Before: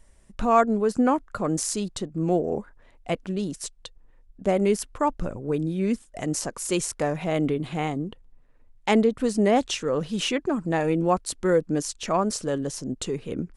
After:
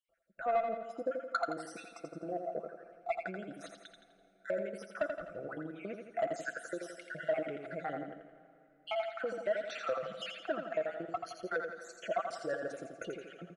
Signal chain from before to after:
time-frequency cells dropped at random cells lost 58%
comb filter 6 ms, depth 50%
automatic gain control gain up to 11.5 dB
brickwall limiter −8 dBFS, peak gain reduction 6.5 dB
downward compressor, threshold −19 dBFS, peak gain reduction 7.5 dB
pair of resonant band-passes 970 Hz, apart 1.1 octaves
soft clipping −24 dBFS, distortion −15 dB
repeating echo 84 ms, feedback 49%, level −6 dB
dense smooth reverb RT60 3.7 s, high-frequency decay 0.75×, DRR 16.5 dB

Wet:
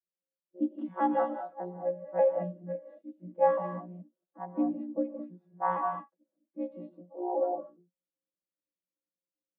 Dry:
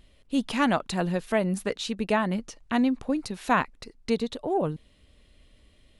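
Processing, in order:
vocoder with an arpeggio as carrier bare fifth, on F#3, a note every 124 ms
high-pass filter 450 Hz 12 dB per octave
low-pass that shuts in the quiet parts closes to 570 Hz, open at −24 dBFS
dynamic equaliser 840 Hz, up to +6 dB, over −43 dBFS, Q 0.72
time stretch by overlap-add 1.6×, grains 32 ms
reverb whose tail is shaped and stops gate 250 ms rising, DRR 2.5 dB
every bin expanded away from the loudest bin 1.5 to 1
level +2 dB

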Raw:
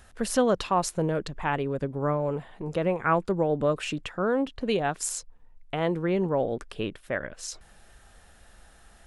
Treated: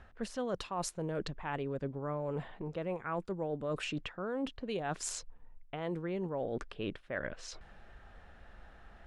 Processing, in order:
low-pass that shuts in the quiet parts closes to 2,200 Hz, open at −20.5 dBFS
reversed playback
downward compressor 6 to 1, threshold −34 dBFS, peak gain reduction 15.5 dB
reversed playback

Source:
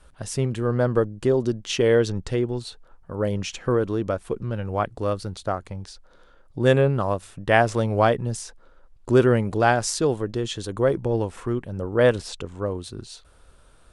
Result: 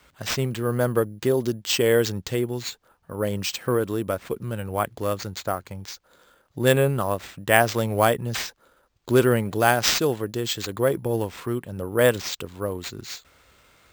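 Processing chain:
high-pass filter 80 Hz
high-shelf EQ 2,300 Hz +9 dB
bad sample-rate conversion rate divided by 4×, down none, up hold
level −1.5 dB

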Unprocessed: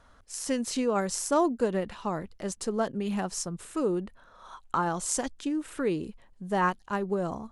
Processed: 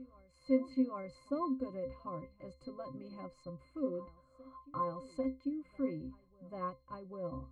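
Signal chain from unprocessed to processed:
parametric band 5,600 Hz −14 dB 0.29 octaves
resonances in every octave C, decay 0.21 s
backwards echo 794 ms −20.5 dB
level +4 dB

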